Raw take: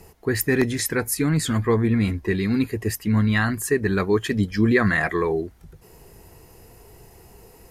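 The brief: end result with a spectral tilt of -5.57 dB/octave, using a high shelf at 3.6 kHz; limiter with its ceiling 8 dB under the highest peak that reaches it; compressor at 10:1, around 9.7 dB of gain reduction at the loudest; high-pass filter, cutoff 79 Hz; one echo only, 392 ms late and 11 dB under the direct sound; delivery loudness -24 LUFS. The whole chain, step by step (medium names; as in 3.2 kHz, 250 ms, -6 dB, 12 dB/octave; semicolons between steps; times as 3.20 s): high-pass 79 Hz; treble shelf 3.6 kHz -7.5 dB; compression 10:1, threshold -25 dBFS; peak limiter -22 dBFS; delay 392 ms -11 dB; trim +7.5 dB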